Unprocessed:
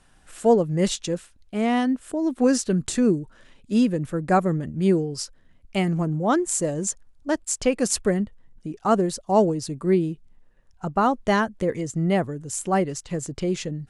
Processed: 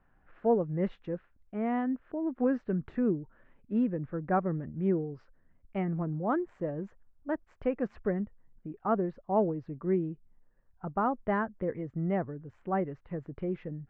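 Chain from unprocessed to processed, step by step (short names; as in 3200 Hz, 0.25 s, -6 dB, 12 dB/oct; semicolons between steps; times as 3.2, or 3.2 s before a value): LPF 1900 Hz 24 dB/oct; gain -8.5 dB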